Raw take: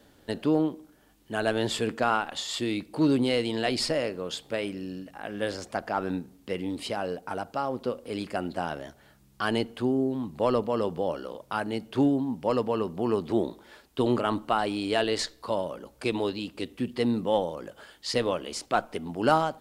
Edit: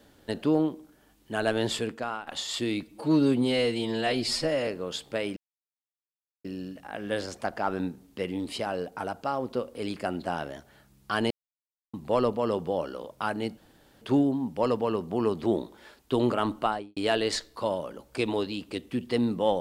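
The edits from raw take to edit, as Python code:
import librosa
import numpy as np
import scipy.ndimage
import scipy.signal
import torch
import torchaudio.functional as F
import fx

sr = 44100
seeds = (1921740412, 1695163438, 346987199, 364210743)

y = fx.studio_fade_out(x, sr, start_s=14.47, length_s=0.36)
y = fx.edit(y, sr, fx.fade_out_to(start_s=1.73, length_s=0.54, curve='qua', floor_db=-10.5),
    fx.stretch_span(start_s=2.83, length_s=1.23, factor=1.5),
    fx.insert_silence(at_s=4.75, length_s=1.08),
    fx.silence(start_s=9.61, length_s=0.63),
    fx.insert_room_tone(at_s=11.88, length_s=0.44), tone=tone)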